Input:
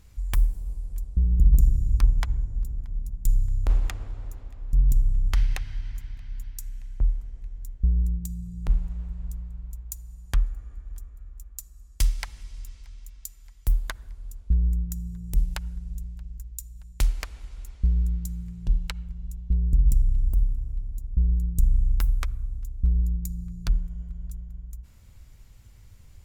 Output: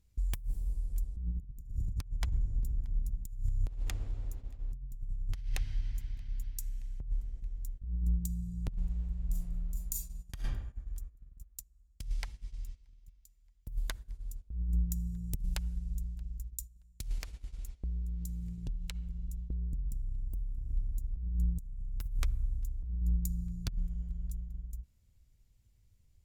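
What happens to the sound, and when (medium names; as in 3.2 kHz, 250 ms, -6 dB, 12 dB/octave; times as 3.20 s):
9.26–10.34 s: reverb throw, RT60 0.85 s, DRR -4.5 dB
11.59–13.72 s: treble shelf 3.5 kHz -8.5 dB
17.18–20.71 s: compression, threshold -31 dBFS
whole clip: gate -38 dBFS, range -14 dB; peaking EQ 1.2 kHz -8 dB 1.9 oct; compressor with a negative ratio -24 dBFS, ratio -0.5; trim -6 dB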